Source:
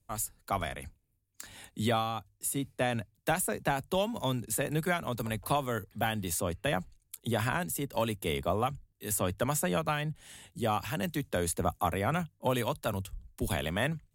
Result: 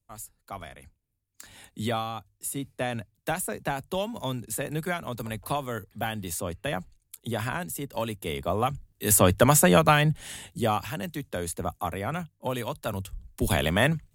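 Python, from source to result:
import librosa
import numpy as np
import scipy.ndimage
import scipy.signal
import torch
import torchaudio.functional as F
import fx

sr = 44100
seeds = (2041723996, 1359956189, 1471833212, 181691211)

y = fx.gain(x, sr, db=fx.line((0.86, -7.0), (1.52, 0.0), (8.36, 0.0), (9.1, 11.5), (10.26, 11.5), (11.04, -1.0), (12.65, -1.0), (13.62, 8.0)))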